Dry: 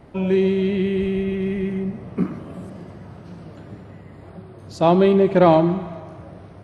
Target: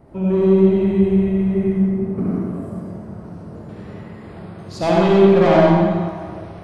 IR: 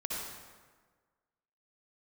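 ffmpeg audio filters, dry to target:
-filter_complex "[0:a]asetnsamples=n=441:p=0,asendcmd='3.69 equalizer g 4',equalizer=f=3.1k:w=0.65:g=-11,asoftclip=type=tanh:threshold=-13.5dB[a];[1:a]atrim=start_sample=2205[b];[a][b]afir=irnorm=-1:irlink=0,volume=1.5dB"

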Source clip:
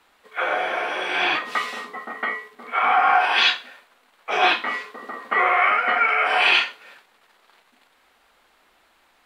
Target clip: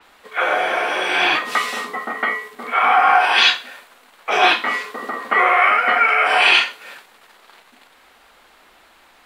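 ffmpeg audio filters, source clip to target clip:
-filter_complex "[0:a]asplit=2[a][b];[b]acompressor=threshold=-33dB:ratio=6,volume=1dB[c];[a][c]amix=inputs=2:normalize=0,adynamicequalizer=threshold=0.0158:dfrequency=5800:dqfactor=0.7:tfrequency=5800:tqfactor=0.7:attack=5:release=100:ratio=0.375:range=3.5:mode=boostabove:tftype=highshelf,volume=2.5dB"

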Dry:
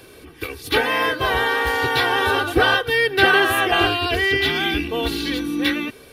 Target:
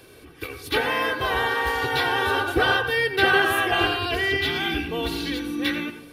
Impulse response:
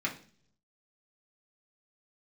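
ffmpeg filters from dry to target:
-filter_complex "[0:a]asplit=2[a][b];[1:a]atrim=start_sample=2205,asetrate=28224,aresample=44100,adelay=87[c];[b][c]afir=irnorm=-1:irlink=0,volume=-16.5dB[d];[a][d]amix=inputs=2:normalize=0,volume=-4.5dB"

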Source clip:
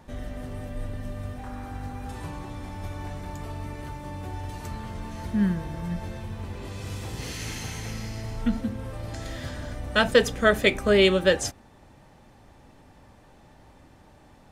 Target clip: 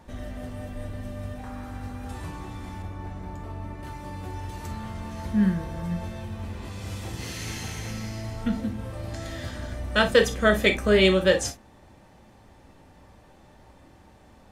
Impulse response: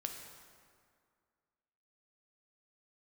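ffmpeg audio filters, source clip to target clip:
-filter_complex "[0:a]asettb=1/sr,asplit=3[a][b][c];[a]atrim=end=2.824[d];[b]atrim=start=2.82:end=3.83,asetpts=PTS-STARTPTS,afade=t=in:d=0.004:c=qsin,afade=t=out:st=1.006:d=0.004:c=qsin,highshelf=f=2.2k:g=-11[e];[c]atrim=start=3.826[f];[d][e]acrossfade=d=0.004:c1=hsin:c2=qsin[g];[g][f]acrossfade=d=0.004:c1=qsin:c2=hsin[h];[1:a]atrim=start_sample=2205,atrim=end_sample=4410,asetrate=66150,aresample=44100[i];[h][i]afir=irnorm=-1:irlink=0,volume=5.5dB"

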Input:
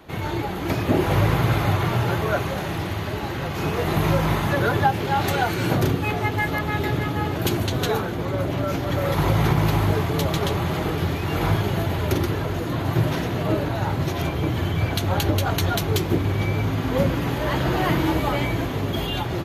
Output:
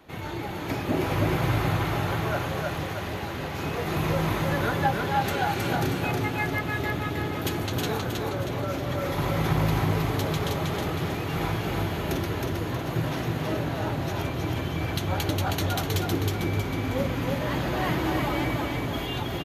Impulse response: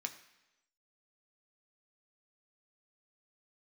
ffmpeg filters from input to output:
-filter_complex "[0:a]aecho=1:1:317|634|951|1268|1585|1902:0.708|0.333|0.156|0.0735|0.0345|0.0162,asplit=2[a][b];[1:a]atrim=start_sample=2205[c];[b][c]afir=irnorm=-1:irlink=0,volume=-6dB[d];[a][d]amix=inputs=2:normalize=0,volume=-8.5dB"

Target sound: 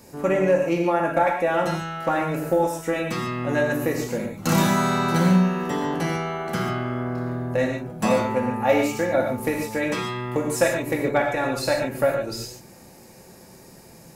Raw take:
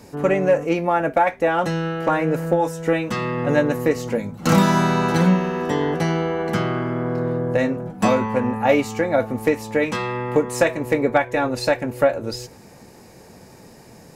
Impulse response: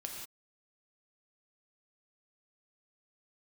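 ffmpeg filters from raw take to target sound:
-filter_complex "[0:a]highshelf=f=8.6k:g=10[a];[1:a]atrim=start_sample=2205,atrim=end_sample=6615[b];[a][b]afir=irnorm=-1:irlink=0,volume=-1dB"

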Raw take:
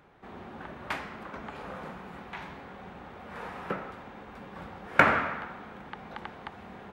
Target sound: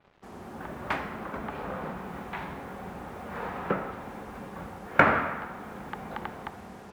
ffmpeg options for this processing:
-af "highshelf=f=2.6k:g=-9.5,dynaudnorm=f=130:g=9:m=6dB,acrusher=bits=8:mix=0:aa=0.5,adynamicequalizer=threshold=0.00355:dfrequency=4700:dqfactor=0.7:tfrequency=4700:tqfactor=0.7:attack=5:release=100:ratio=0.375:range=2:mode=cutabove:tftype=highshelf"

